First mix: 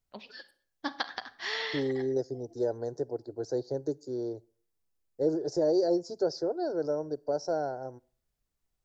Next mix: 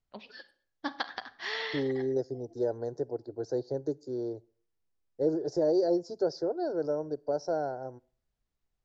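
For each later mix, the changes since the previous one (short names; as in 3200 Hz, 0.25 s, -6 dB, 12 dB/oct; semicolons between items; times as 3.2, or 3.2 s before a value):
master: add air absorption 81 m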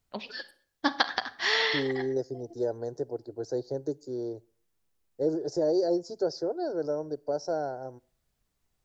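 first voice +8.0 dB; master: remove air absorption 81 m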